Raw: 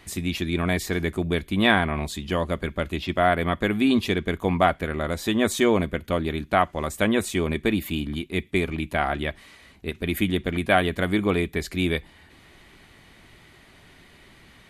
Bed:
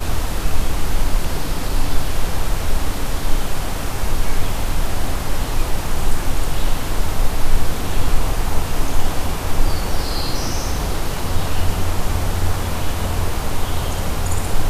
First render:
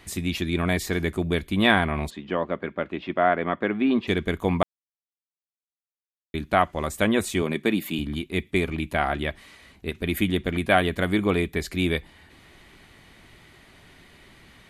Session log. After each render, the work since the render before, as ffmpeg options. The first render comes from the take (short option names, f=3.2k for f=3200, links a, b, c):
-filter_complex "[0:a]asplit=3[a][b][c];[a]afade=t=out:st=2.09:d=0.02[d];[b]highpass=210,lowpass=2.1k,afade=t=in:st=2.09:d=0.02,afade=t=out:st=4.07:d=0.02[e];[c]afade=t=in:st=4.07:d=0.02[f];[d][e][f]amix=inputs=3:normalize=0,asettb=1/sr,asplit=3[g][h][i];[g]atrim=end=7.424[j];[h]atrim=start=7.42:end=7.99,asetpts=PTS-STARTPTS,afade=t=in:d=0.004:c=qsin,afade=t=out:st=0.566:d=0.004:c=qsin,highpass=f=140:w=0.5412,highpass=f=140:w=1.3066[k];[i]atrim=start=7.986[l];[j][k]acrossfade=d=0.004:c1=hsin:c2=qsin[m];[m][l]acrossfade=d=0.004:c1=qsin:c2=hsin,asplit=3[n][o][p];[n]atrim=end=4.63,asetpts=PTS-STARTPTS,afade=t=out:st=4.626:d=0.004:c=hsin[q];[o]atrim=start=4.63:end=6.34,asetpts=PTS-STARTPTS,volume=0[r];[p]atrim=start=6.34,asetpts=PTS-STARTPTS,afade=t=in:d=0.004:c=hsin[s];[q][r][s]concat=n=3:v=0:a=1"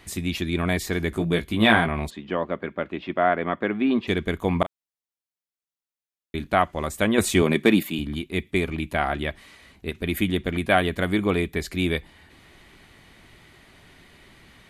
-filter_complex "[0:a]asettb=1/sr,asplit=3[a][b][c];[a]atrim=end=1.104[d];[b]atrim=start=1.1:end=1.88,asetpts=PTS-STARTPTS,afade=t=in:d=0.004:c=qsin,afade=t=out:st=0.776:d=0.004:c=qsin,asplit=2[e][f];[f]adelay=18,volume=-4dB[g];[e][g]amix=inputs=2:normalize=0,atrim=end_sample=34398[h];[c]atrim=start=1.876[i];[d][h]acrossfade=d=0.004:c1=hsin:c2=qsin[j];[j][i]acrossfade=d=0.004:c1=qsin:c2=hsin,asettb=1/sr,asplit=3[k][l][m];[k]atrim=end=4.524[n];[l]atrim=start=4.52:end=6.47,asetpts=PTS-STARTPTS,afade=t=in:d=0.004:c=qsin,afade=t=out:st=1.946:d=0.004:c=qsin,asplit=2[o][p];[p]adelay=35,volume=-13dB[q];[o][q]amix=inputs=2:normalize=0,atrim=end_sample=85995[r];[m]atrim=start=6.466[s];[n][r]acrossfade=d=0.004:c1=hsin:c2=qsin[t];[t][s]acrossfade=d=0.004:c1=qsin:c2=hsin,asettb=1/sr,asplit=3[u][v][w];[u]atrim=end=7.184[x];[v]atrim=start=7.18:end=7.83,asetpts=PTS-STARTPTS,afade=t=in:d=0.004:c=qsin,afade=t=out:st=0.646:d=0.004:c=qsin,acontrast=49[y];[w]atrim=start=7.826[z];[x][y]acrossfade=d=0.004:c1=hsin:c2=qsin[aa];[aa][z]acrossfade=d=0.004:c1=qsin:c2=hsin"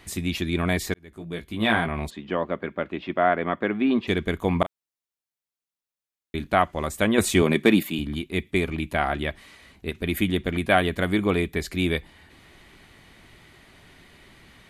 -filter_complex "[0:a]asplit=2[a][b];[a]atrim=end=0.94,asetpts=PTS-STARTPTS,afade=t=out:st=0.936:d=0.004:c=hsin[c];[b]atrim=start=0.94,asetpts=PTS-STARTPTS,afade=t=in:d=1.28[d];[c][d]concat=n=2:v=0:a=1"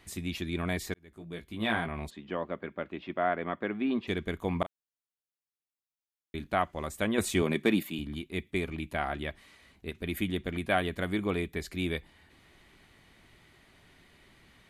-af "volume=-8dB"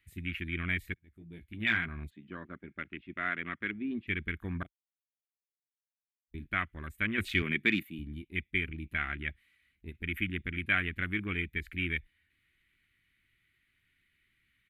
-af "afwtdn=0.01,firequalizer=gain_entry='entry(110,0);entry(170,-5);entry(330,-6);entry(490,-18);entry(840,-18);entry(1400,1);entry(2200,8);entry(5300,-9);entry(12000,5)':delay=0.05:min_phase=1"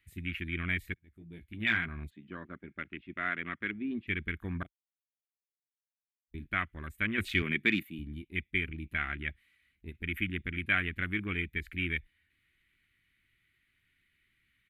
-af anull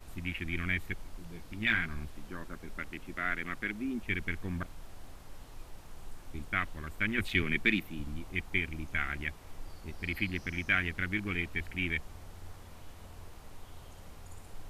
-filter_complex "[1:a]volume=-28.5dB[a];[0:a][a]amix=inputs=2:normalize=0"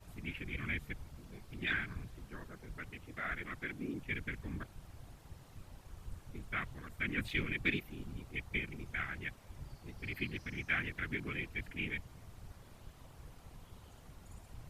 -af "afftfilt=real='hypot(re,im)*cos(2*PI*random(0))':imag='hypot(re,im)*sin(2*PI*random(1))':win_size=512:overlap=0.75"